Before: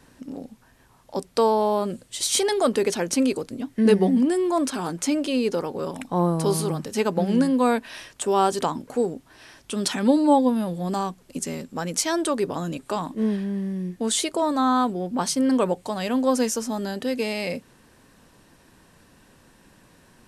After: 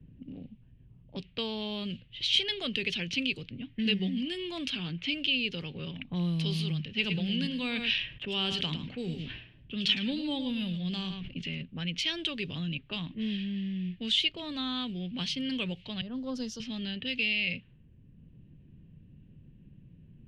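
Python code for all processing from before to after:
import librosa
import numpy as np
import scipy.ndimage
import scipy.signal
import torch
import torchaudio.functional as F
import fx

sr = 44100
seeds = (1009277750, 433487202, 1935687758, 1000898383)

y = fx.chain(x, sr, fx.echo_single(ms=108, db=-12.0),
    fx.sustainer(db_per_s=54.0), at=(6.87, 11.62))
y = fx.chain(y, sr, fx.law_mismatch(coded='mu'),
    fx.curve_eq(hz=(1300.0, 2500.0, 3500.0, 5100.0, 9600.0), db=(0, -27, -14, -4, -12)),
    fx.band_widen(depth_pct=70), at=(16.01, 16.6))
y = fx.env_lowpass(y, sr, base_hz=350.0, full_db=-20.0)
y = fx.curve_eq(y, sr, hz=(150.0, 250.0, 880.0, 1400.0, 2900.0, 8000.0), db=(0, -13, -25, -18, 11, -26))
y = fx.band_squash(y, sr, depth_pct=40)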